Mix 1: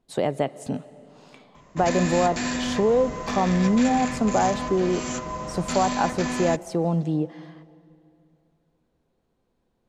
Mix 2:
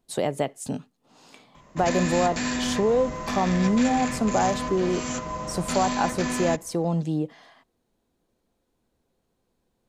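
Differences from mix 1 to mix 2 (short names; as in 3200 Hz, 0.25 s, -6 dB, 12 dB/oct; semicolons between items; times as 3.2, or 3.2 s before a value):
speech: remove LPF 3000 Hz 6 dB/oct; reverb: off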